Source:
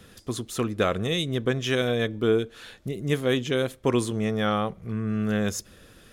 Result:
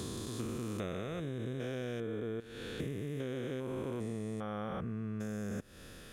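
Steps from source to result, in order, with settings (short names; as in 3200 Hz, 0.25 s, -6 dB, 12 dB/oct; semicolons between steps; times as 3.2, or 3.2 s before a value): stepped spectrum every 0.4 s; dynamic EQ 3700 Hz, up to -7 dB, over -49 dBFS, Q 1.1; compressor 10:1, threshold -37 dBFS, peak gain reduction 15 dB; gain +2 dB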